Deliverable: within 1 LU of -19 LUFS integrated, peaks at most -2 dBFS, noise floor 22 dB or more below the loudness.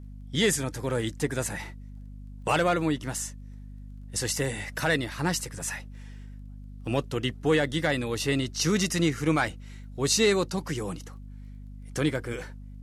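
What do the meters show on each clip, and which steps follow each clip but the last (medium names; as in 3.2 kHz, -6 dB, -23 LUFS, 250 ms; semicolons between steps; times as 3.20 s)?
tick rate 17 per s; hum 50 Hz; highest harmonic 250 Hz; hum level -40 dBFS; loudness -27.5 LUFS; peak level -12.5 dBFS; loudness target -19.0 LUFS
-> de-click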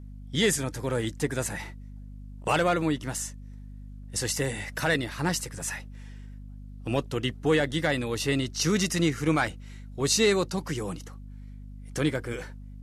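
tick rate 0 per s; hum 50 Hz; highest harmonic 250 Hz; hum level -40 dBFS
-> de-hum 50 Hz, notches 5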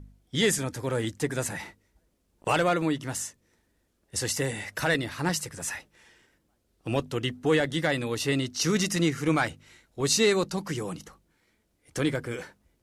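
hum not found; loudness -28.0 LUFS; peak level -12.5 dBFS; loudness target -19.0 LUFS
-> trim +9 dB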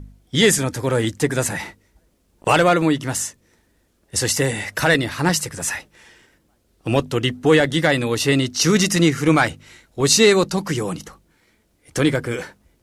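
loudness -19.0 LUFS; peak level -3.5 dBFS; noise floor -63 dBFS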